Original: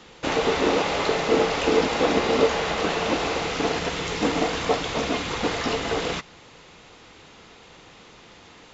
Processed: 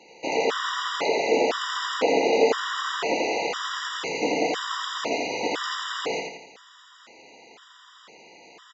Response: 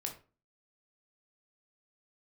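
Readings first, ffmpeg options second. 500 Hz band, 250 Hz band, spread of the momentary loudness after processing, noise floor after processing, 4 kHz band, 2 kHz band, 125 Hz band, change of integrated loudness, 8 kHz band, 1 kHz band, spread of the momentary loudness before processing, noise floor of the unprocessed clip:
-1.5 dB, -5.5 dB, 8 LU, -52 dBFS, -1.0 dB, -1.0 dB, -15.0 dB, -2.0 dB, no reading, -1.0 dB, 5 LU, -49 dBFS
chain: -af "highpass=350,aecho=1:1:84|168|252|336|420|504:0.708|0.326|0.15|0.0689|0.0317|0.0146,afftfilt=real='re*gt(sin(2*PI*0.99*pts/sr)*(1-2*mod(floor(b*sr/1024/970),2)),0)':imag='im*gt(sin(2*PI*0.99*pts/sr)*(1-2*mod(floor(b*sr/1024/970),2)),0)':win_size=1024:overlap=0.75"

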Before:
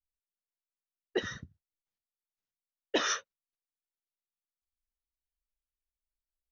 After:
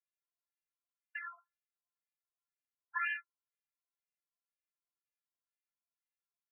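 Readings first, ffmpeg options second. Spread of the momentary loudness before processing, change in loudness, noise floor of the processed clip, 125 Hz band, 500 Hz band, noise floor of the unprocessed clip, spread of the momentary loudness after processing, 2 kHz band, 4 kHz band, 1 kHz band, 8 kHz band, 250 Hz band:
11 LU, -6.0 dB, under -85 dBFS, under -40 dB, under -40 dB, under -85 dBFS, 12 LU, -0.5 dB, -20.5 dB, -3.5 dB, no reading, under -40 dB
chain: -af "afftfilt=real='hypot(re,im)*cos(PI*b)':imag='0':win_size=512:overlap=0.75,afftfilt=real='re*between(b*sr/1024,950*pow(2200/950,0.5+0.5*sin(2*PI*2*pts/sr))/1.41,950*pow(2200/950,0.5+0.5*sin(2*PI*2*pts/sr))*1.41)':imag='im*between(b*sr/1024,950*pow(2200/950,0.5+0.5*sin(2*PI*2*pts/sr))/1.41,950*pow(2200/950,0.5+0.5*sin(2*PI*2*pts/sr))*1.41)':win_size=1024:overlap=0.75,volume=1.68"

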